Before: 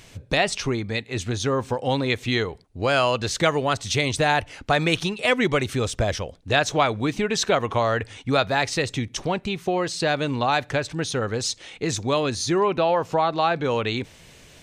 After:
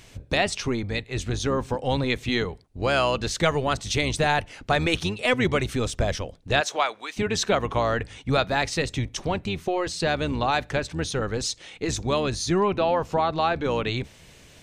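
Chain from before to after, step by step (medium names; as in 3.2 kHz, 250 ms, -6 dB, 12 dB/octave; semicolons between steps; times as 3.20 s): octave divider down 1 oct, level -4 dB; 6.60–7.16 s: high-pass 410 Hz -> 1.2 kHz 12 dB/octave; trim -2 dB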